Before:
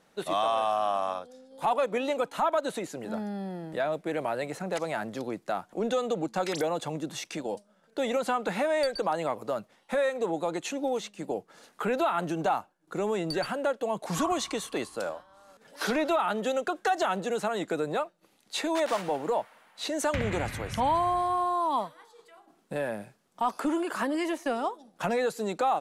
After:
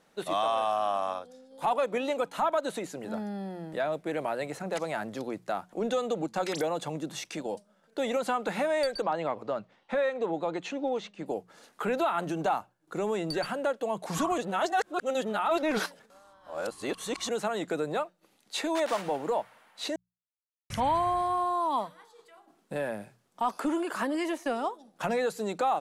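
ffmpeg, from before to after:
-filter_complex "[0:a]asettb=1/sr,asplit=3[a][b][c];[a]atrim=end=9.024[d];[b]atrim=start=9.02:end=11.26,asetpts=PTS-STARTPTS,afade=t=in:d=0.004:c=qsin,afade=t=out:st=2.236:d=0.004:c=qsin,lowpass=4.1k[e];[c]atrim=start=11.256[f];[d][e]acrossfade=d=0.004:c1=hsin:c2=qsin[g];[g][f]acrossfade=d=0.004:c1=qsin:c2=hsin,asplit=5[h][i][j][k][l];[h]atrim=end=14.382[m];[i]atrim=start=14.378:end=17.292,asetpts=PTS-STARTPTS,areverse[n];[j]atrim=start=17.288:end=19.96,asetpts=PTS-STARTPTS,afade=t=out:st=2.668:d=0.004:c=hsin[o];[k]atrim=start=19.96:end=20.7,asetpts=PTS-STARTPTS,volume=0[p];[l]atrim=start=20.7,asetpts=PTS-STARTPTS,afade=t=in:d=0.004:c=hsin[q];[m][n]acrossfade=d=0.004:c1=hsin:c2=hsin[r];[o][p][q]concat=n=3:v=0:a=1[s];[r][s]acrossfade=d=0.004:c1=hsin:c2=hsin,bandreject=f=60:t=h:w=6,bandreject=f=120:t=h:w=6,bandreject=f=180:t=h:w=6,volume=-1dB"

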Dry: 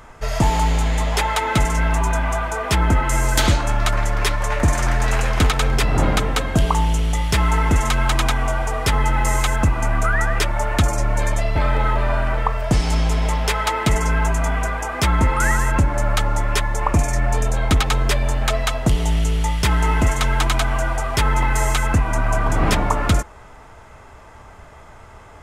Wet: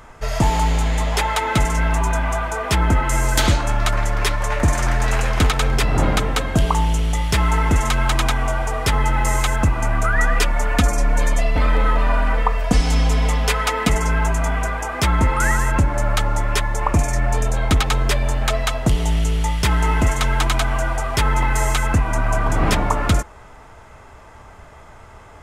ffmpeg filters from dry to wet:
-filter_complex "[0:a]asettb=1/sr,asplit=3[a][b][c];[a]atrim=end=10.164[d];[b]atrim=start=10.16:end=13.9,asetpts=PTS-STARTPTS,afade=t=in:d=0.004:c=qsin,afade=t=out:st=3.736:d=0.004:c=qsin,aecho=1:1:4.1:0.65,atrim=end_sample=164934[e];[c]atrim=start=13.896[f];[d][e]acrossfade=d=0.004:c1=hsin:c2=qsin[g];[g][f]acrossfade=d=0.004:c1=qsin:c2=hsin"

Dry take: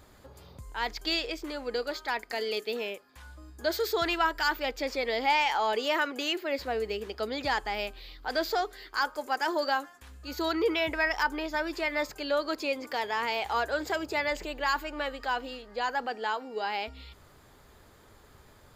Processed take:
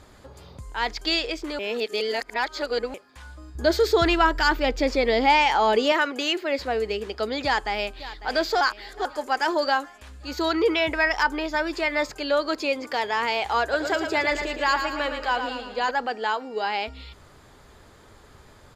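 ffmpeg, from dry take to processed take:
-filter_complex "[0:a]asettb=1/sr,asplit=3[a][b][c];[a]atrim=end=3.554[d];[b]atrim=start=3.55:end=5.92,asetpts=PTS-STARTPTS,afade=t=in:d=0.004:c=qsin,afade=t=out:st=2.366:d=0.004:c=qsin,lowshelf=f=340:g=11.5[e];[c]atrim=start=5.916[f];[d][e]acrossfade=d=0.004:c1=hsin:c2=qsin[g];[g][f]acrossfade=d=0.004:c1=qsin:c2=hsin,asplit=2[h][i];[i]afade=t=in:st=7.44:d=0.01,afade=t=out:st=8.08:d=0.01,aecho=0:1:550|1100|1650|2200|2750|3300:0.16788|0.100728|0.0604369|0.0362622|0.0217573|0.0130544[j];[h][j]amix=inputs=2:normalize=0,asettb=1/sr,asplit=3[k][l][m];[k]atrim=end=13.624[n];[l]atrim=start=13.62:end=15.91,asetpts=PTS-STARTPTS,afade=t=in:d=0.004:c=qsin,afade=t=out:st=2.286:d=0.004:c=qsin,aecho=1:1:113|226|339|452|565|678:0.447|0.228|0.116|0.0593|0.0302|0.0154,atrim=end_sample=100989[o];[m]atrim=start=15.906[p];[n][o]acrossfade=d=0.004:c1=hsin:c2=qsin[q];[q][p]acrossfade=d=0.004:c1=qsin:c2=hsin,asplit=5[r][s][t][u][v];[r]atrim=end=1.592[w];[s]atrim=start=1.588:end=2.942,asetpts=PTS-STARTPTS,areverse[x];[t]atrim=start=2.938:end=8.612[y];[u]atrim=start=8.608:end=9.052,asetpts=PTS-STARTPTS,areverse[z];[v]atrim=start=9.048[aa];[w][x]acrossfade=d=0.004:c1=hsin:c2=hsin[ab];[ab][y]acrossfade=d=0.004:c1=hsin:c2=hsin[ac];[ac][z]acrossfade=d=0.004:c1=hsin:c2=hsin[ad];[ad][aa]acrossfade=d=0.004:c1=hsin:c2=hsin,lowpass=9.9k,volume=5.5dB"

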